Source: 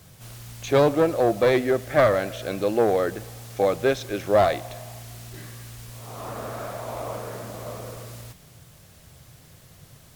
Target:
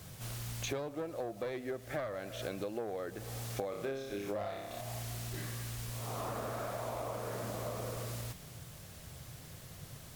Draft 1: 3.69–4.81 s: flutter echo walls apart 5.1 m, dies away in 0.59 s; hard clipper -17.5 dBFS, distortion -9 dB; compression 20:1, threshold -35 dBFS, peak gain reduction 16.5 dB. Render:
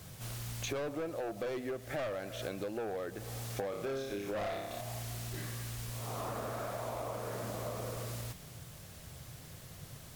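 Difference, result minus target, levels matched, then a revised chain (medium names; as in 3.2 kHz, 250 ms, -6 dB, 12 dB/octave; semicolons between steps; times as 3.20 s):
hard clipper: distortion +20 dB
3.69–4.81 s: flutter echo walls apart 5.1 m, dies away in 0.59 s; hard clipper -8 dBFS, distortion -29 dB; compression 20:1, threshold -35 dBFS, peak gain reduction 24.5 dB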